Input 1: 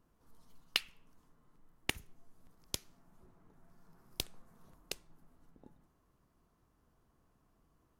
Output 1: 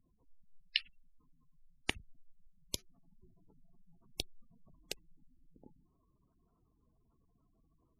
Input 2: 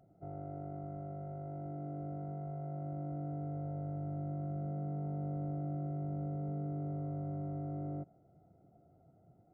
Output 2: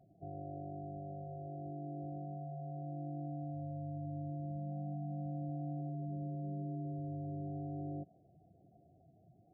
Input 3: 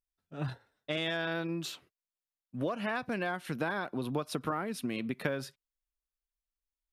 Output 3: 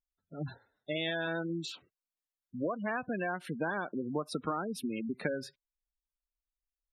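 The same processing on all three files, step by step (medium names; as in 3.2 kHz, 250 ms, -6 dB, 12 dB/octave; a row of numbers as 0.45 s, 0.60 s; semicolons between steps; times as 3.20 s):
dynamic bell 130 Hz, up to -8 dB, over -59 dBFS, Q 5.5; spectral gate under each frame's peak -15 dB strong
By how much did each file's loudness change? -0.5 LU, -2.0 LU, -1.0 LU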